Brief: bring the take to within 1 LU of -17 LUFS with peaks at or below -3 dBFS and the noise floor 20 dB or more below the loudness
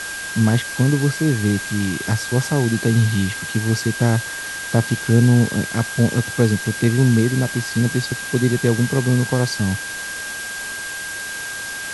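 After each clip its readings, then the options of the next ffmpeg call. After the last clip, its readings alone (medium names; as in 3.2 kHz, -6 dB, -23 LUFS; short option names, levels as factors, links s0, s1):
steady tone 1.6 kHz; tone level -28 dBFS; noise floor -29 dBFS; noise floor target -40 dBFS; loudness -19.5 LUFS; peak level -1.5 dBFS; loudness target -17.0 LUFS
-> -af "bandreject=f=1600:w=30"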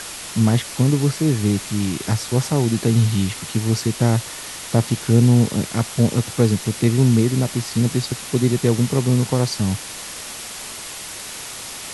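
steady tone not found; noise floor -33 dBFS; noise floor target -40 dBFS
-> -af "afftdn=nr=7:nf=-33"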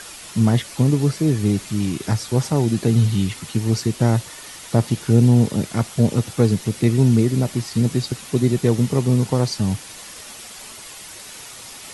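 noise floor -38 dBFS; noise floor target -40 dBFS
-> -af "afftdn=nr=6:nf=-38"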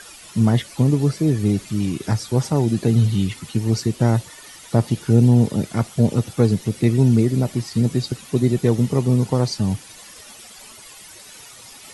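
noise floor -43 dBFS; loudness -19.5 LUFS; peak level -2.0 dBFS; loudness target -17.0 LUFS
-> -af "volume=1.33,alimiter=limit=0.708:level=0:latency=1"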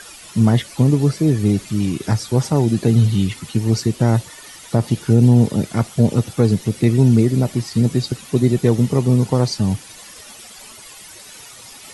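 loudness -17.5 LUFS; peak level -3.0 dBFS; noise floor -40 dBFS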